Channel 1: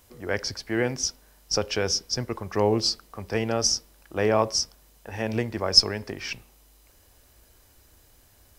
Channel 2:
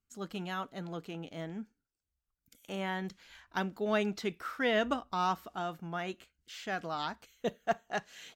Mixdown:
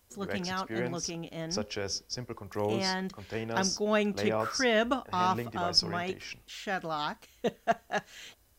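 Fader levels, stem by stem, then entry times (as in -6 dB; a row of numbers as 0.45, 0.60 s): -9.0, +3.0 dB; 0.00, 0.00 s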